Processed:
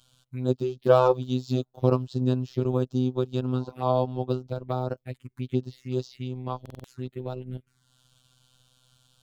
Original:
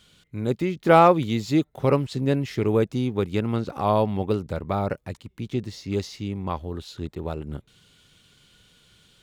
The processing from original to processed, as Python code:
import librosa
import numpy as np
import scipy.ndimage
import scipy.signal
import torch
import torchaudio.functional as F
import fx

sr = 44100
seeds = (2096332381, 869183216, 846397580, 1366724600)

y = fx.spec_repair(x, sr, seeds[0], start_s=3.56, length_s=0.22, low_hz=520.0, high_hz=1100.0, source='before')
y = fx.transient(y, sr, attack_db=2, sustain_db=-6)
y = fx.env_phaser(y, sr, low_hz=330.0, high_hz=2100.0, full_db=-24.0)
y = fx.robotise(y, sr, hz=127.0)
y = fx.buffer_glitch(y, sr, at_s=(6.61,), block=2048, repeats=4)